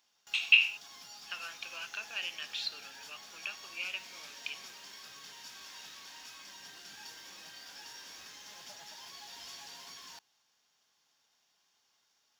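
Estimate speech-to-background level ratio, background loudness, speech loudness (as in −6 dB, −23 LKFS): 16.0 dB, −47.5 LKFS, −31.5 LKFS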